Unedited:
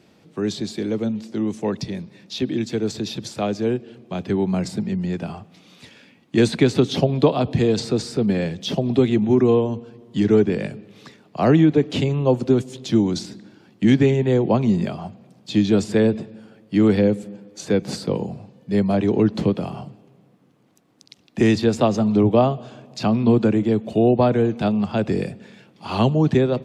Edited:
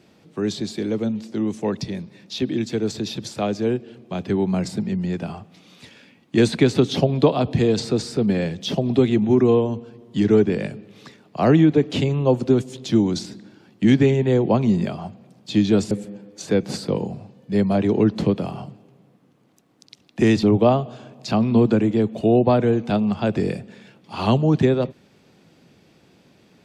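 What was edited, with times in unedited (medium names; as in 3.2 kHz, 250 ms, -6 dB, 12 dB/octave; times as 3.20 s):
15.91–17.10 s: delete
21.62–22.15 s: delete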